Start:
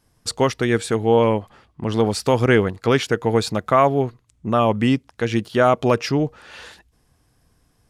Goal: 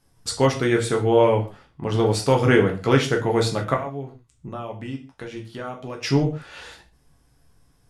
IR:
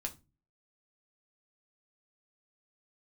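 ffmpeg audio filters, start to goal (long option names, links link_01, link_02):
-filter_complex "[0:a]asettb=1/sr,asplit=3[link_01][link_02][link_03];[link_01]atrim=end=3.744[link_04];[link_02]atrim=start=3.74:end=6.03,asetpts=PTS-STARTPTS,afade=type=in:duration=0.004:curve=qsin,afade=type=out:start_time=2.286:duration=0.004:curve=qsin,acompressor=threshold=-34dB:ratio=3[link_05];[link_03]atrim=start=6.026[link_06];[link_04][link_05]acrossfade=duration=0.004:curve1=hsin:curve2=qsin[link_07];[link_07][link_06]acrossfade=duration=0.004:curve1=qsin:curve2=hsin[link_08];[1:a]atrim=start_sample=2205,atrim=end_sample=3969,asetrate=24255,aresample=44100[link_09];[link_08][link_09]afir=irnorm=-1:irlink=0,volume=-3.5dB"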